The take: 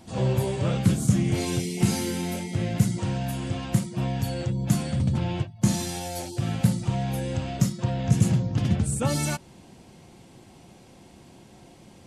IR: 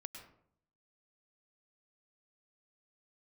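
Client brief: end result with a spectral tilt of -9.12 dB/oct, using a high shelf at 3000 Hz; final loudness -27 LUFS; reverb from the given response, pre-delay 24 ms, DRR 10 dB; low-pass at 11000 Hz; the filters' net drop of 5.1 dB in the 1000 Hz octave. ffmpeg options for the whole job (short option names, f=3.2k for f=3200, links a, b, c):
-filter_complex "[0:a]lowpass=11k,equalizer=f=1k:t=o:g=-7,highshelf=f=3k:g=-7,asplit=2[a][b];[1:a]atrim=start_sample=2205,adelay=24[c];[b][c]afir=irnorm=-1:irlink=0,volume=-5.5dB[d];[a][d]amix=inputs=2:normalize=0,volume=-1dB"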